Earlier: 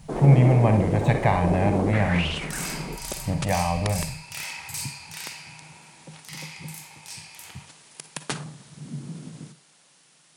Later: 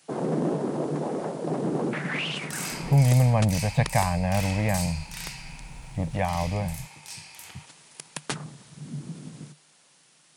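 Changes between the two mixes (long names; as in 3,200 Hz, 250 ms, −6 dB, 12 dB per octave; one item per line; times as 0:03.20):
speech: entry +2.70 s
reverb: off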